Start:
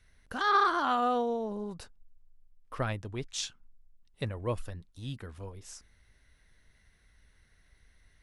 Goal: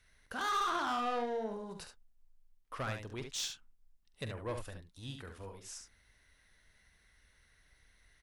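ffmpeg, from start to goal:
ffmpeg -i in.wav -af "lowshelf=frequency=420:gain=-7.5,asoftclip=type=tanh:threshold=-32dB,aecho=1:1:45|71:0.266|0.447" out.wav

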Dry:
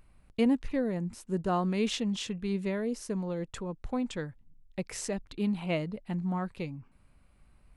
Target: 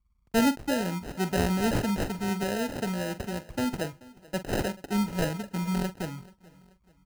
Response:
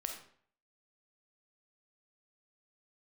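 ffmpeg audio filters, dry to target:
-filter_complex "[0:a]highpass=61,anlmdn=0.00158,atempo=1.1,aemphasis=mode=production:type=75fm,acrossover=split=110|550|2700[link_01][link_02][link_03][link_04];[link_04]adynamicsmooth=sensitivity=5:basefreq=7000[link_05];[link_01][link_02][link_03][link_05]amix=inputs=4:normalize=0,acrusher=samples=39:mix=1:aa=0.000001,bandreject=frequency=3500:width=12,asplit=2[link_06][link_07];[link_07]adelay=44,volume=-13dB[link_08];[link_06][link_08]amix=inputs=2:normalize=0,aecho=1:1:433|866|1299:0.0794|0.0326|0.0134,volume=3dB"

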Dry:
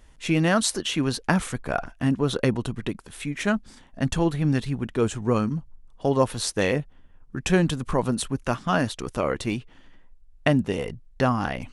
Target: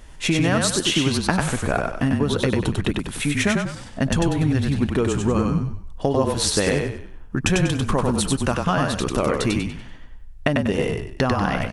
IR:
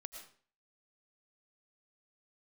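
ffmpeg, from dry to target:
-filter_complex "[0:a]acompressor=threshold=-27dB:ratio=6,asplit=2[link_01][link_02];[link_02]asplit=5[link_03][link_04][link_05][link_06][link_07];[link_03]adelay=96,afreqshift=-32,volume=-3dB[link_08];[link_04]adelay=192,afreqshift=-64,volume=-11.6dB[link_09];[link_05]adelay=288,afreqshift=-96,volume=-20.3dB[link_10];[link_06]adelay=384,afreqshift=-128,volume=-28.9dB[link_11];[link_07]adelay=480,afreqshift=-160,volume=-37.5dB[link_12];[link_08][link_09][link_10][link_11][link_12]amix=inputs=5:normalize=0[link_13];[link_01][link_13]amix=inputs=2:normalize=0,volume=9dB"

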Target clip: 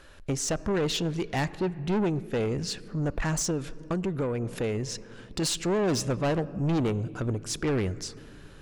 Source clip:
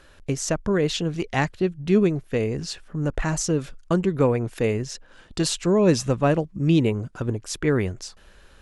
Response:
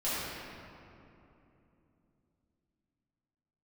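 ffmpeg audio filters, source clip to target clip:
-filter_complex "[0:a]asplit=2[link_01][link_02];[1:a]atrim=start_sample=2205[link_03];[link_02][link_03]afir=irnorm=-1:irlink=0,volume=-29.5dB[link_04];[link_01][link_04]amix=inputs=2:normalize=0,asettb=1/sr,asplit=3[link_05][link_06][link_07];[link_05]atrim=end=3.504[link_08];[link_06]atrim=start=3.5:end=5.42,asetpts=PTS-STARTPTS,afade=type=in:duration=0.004:curve=qsin,afade=type=out:start_time=1.916:duration=0.004:curve=qsin,acompressor=threshold=-22dB:ratio=6[link_09];[link_07]atrim=start=5.416[link_10];[link_08][link_09]acrossfade=duration=0.004:curve1=hsin:curve2=qsin[link_11];[link_11][link_10]acrossfade=duration=0.004:curve1=qsin:curve2=hsin,asoftclip=type=tanh:threshold=-22.5dB"

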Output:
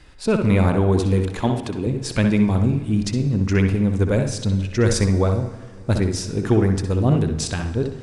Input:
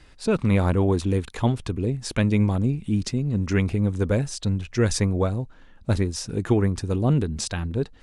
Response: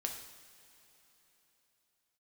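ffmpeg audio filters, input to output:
-filter_complex "[0:a]asettb=1/sr,asplit=3[link_01][link_02][link_03];[link_01]atrim=end=1.414[link_04];[link_02]atrim=start=1.41:end=1.87,asetpts=PTS-STARTPTS,afade=type=in:duration=0.004:curve=qsin,afade=type=out:start_time=0.456:duration=0.004:curve=qsin,highpass=150[link_05];[link_03]atrim=start=1.866[link_06];[link_04][link_05]acrossfade=duration=0.004:curve1=hsin:curve2=qsin[link_07];[link_07][link_06]acrossfade=duration=0.004:curve1=qsin:curve2=hsin,asplit=2[link_08][link_09];[link_09]highshelf=frequency=4200:gain=-9.5[link_10];[1:a]atrim=start_sample=2205,adelay=63[link_11];[link_10][link_11]afir=irnorm=-1:irlink=0,volume=-4.5dB[link_12];[link_08][link_12]amix=inputs=2:normalize=0,volume=2.5dB"

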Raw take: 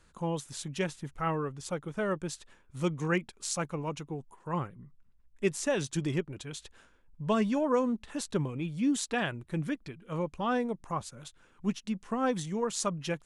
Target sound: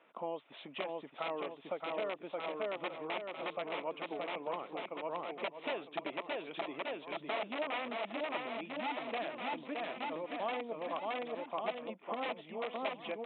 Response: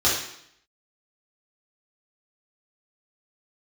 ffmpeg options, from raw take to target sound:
-af "aresample=8000,aeval=exprs='(mod(13.3*val(0)+1,2)-1)/13.3':channel_layout=same,aresample=44100,aecho=1:1:620|1178|1680|2132|2539:0.631|0.398|0.251|0.158|0.1,acompressor=threshold=-39dB:ratio=6,highpass=frequency=290:width=0.5412,highpass=frequency=290:width=1.3066,equalizer=frequency=370:width_type=q:width=4:gain=-4,equalizer=frequency=660:width_type=q:width=4:gain=9,equalizer=frequency=1600:width_type=q:width=4:gain=-9,equalizer=frequency=2300:width_type=q:width=4:gain=3,lowpass=frequency=3100:width=0.5412,lowpass=frequency=3100:width=1.3066,volume=3.5dB"

